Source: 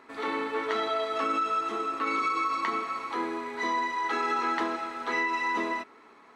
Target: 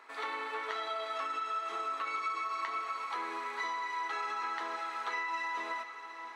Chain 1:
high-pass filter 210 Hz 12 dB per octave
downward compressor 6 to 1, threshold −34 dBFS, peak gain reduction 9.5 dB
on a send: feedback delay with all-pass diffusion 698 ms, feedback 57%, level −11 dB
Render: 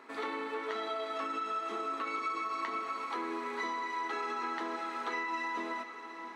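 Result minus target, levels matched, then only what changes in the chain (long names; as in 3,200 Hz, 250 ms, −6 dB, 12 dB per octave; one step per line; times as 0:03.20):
250 Hz band +11.5 dB
change: high-pass filter 690 Hz 12 dB per octave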